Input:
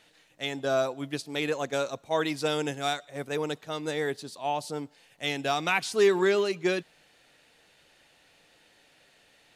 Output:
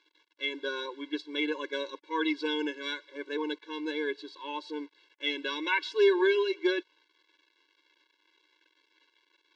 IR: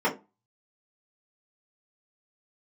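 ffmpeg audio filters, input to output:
-af "acrusher=bits=8:mix=0:aa=0.000001,highpass=200,equalizer=frequency=310:width_type=q:width=4:gain=4,equalizer=frequency=520:width_type=q:width=4:gain=-9,equalizer=frequency=800:width_type=q:width=4:gain=4,equalizer=frequency=2000:width_type=q:width=4:gain=6,equalizer=frequency=3600:width_type=q:width=4:gain=6,lowpass=frequency=4500:width=0.5412,lowpass=frequency=4500:width=1.3066,afftfilt=real='re*eq(mod(floor(b*sr/1024/290),2),1)':imag='im*eq(mod(floor(b*sr/1024/290),2),1)':win_size=1024:overlap=0.75"

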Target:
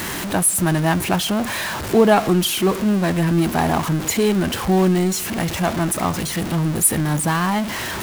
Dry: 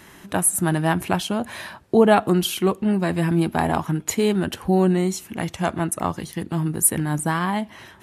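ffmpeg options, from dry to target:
ffmpeg -i in.wav -af "aeval=exprs='val(0)+0.5*0.0841*sgn(val(0))':channel_layout=same" out.wav

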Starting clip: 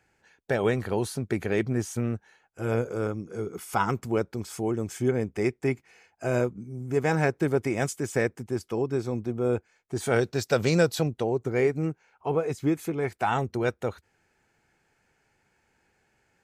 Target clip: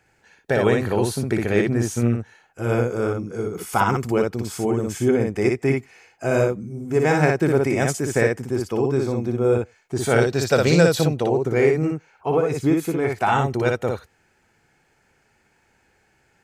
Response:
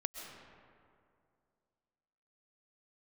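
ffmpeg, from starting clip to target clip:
-filter_complex "[0:a]asplit=2[link_01][link_02];[1:a]atrim=start_sample=2205,atrim=end_sample=4410,adelay=59[link_03];[link_02][link_03]afir=irnorm=-1:irlink=0,volume=-1.5dB[link_04];[link_01][link_04]amix=inputs=2:normalize=0,volume=5dB"

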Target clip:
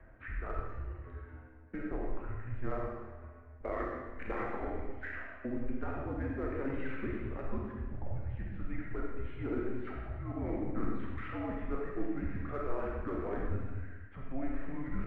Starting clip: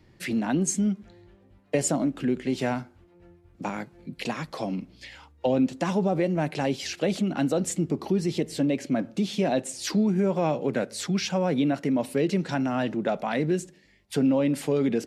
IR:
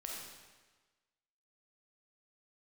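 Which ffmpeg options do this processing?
-filter_complex "[0:a]aphaser=in_gain=1:out_gain=1:delay=1.8:decay=0.33:speed=0.37:type=triangular,areverse,acompressor=threshold=-38dB:ratio=6,areverse,highpass=frequency=250:width_type=q:width=0.5412,highpass=frequency=250:width_type=q:width=1.307,lowpass=frequency=2200:width_type=q:width=0.5176,lowpass=frequency=2200:width_type=q:width=0.7071,lowpass=frequency=2200:width_type=q:width=1.932,afreqshift=-270,asplit=2[link_01][link_02];[link_02]aeval=exprs='clip(val(0),-1,0.0106)':channel_layout=same,volume=-6dB[link_03];[link_01][link_03]amix=inputs=2:normalize=0,equalizer=frequency=160:width_type=o:width=0.22:gain=-14[link_04];[1:a]atrim=start_sample=2205[link_05];[link_04][link_05]afir=irnorm=-1:irlink=0,volume=5.5dB"

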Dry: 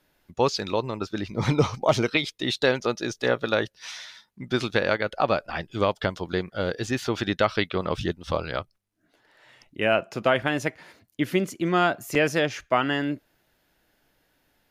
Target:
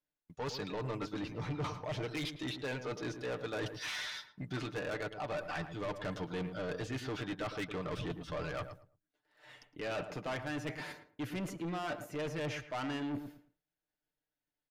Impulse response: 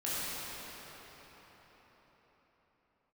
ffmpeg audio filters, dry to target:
-filter_complex "[0:a]agate=range=-33dB:threshold=-48dB:ratio=3:detection=peak,acrossover=split=3300[link_01][link_02];[link_02]acompressor=threshold=-47dB:ratio=4:attack=1:release=60[link_03];[link_01][link_03]amix=inputs=2:normalize=0,aecho=1:1:6.7:0.57,areverse,acompressor=threshold=-35dB:ratio=5,areverse,asoftclip=type=tanh:threshold=-38dB,asplit=2[link_04][link_05];[link_05]adelay=110,lowpass=frequency=1200:poles=1,volume=-8dB,asplit=2[link_06][link_07];[link_07]adelay=110,lowpass=frequency=1200:poles=1,volume=0.23,asplit=2[link_08][link_09];[link_09]adelay=110,lowpass=frequency=1200:poles=1,volume=0.23[link_10];[link_06][link_08][link_10]amix=inputs=3:normalize=0[link_11];[link_04][link_11]amix=inputs=2:normalize=0,volume=4dB"

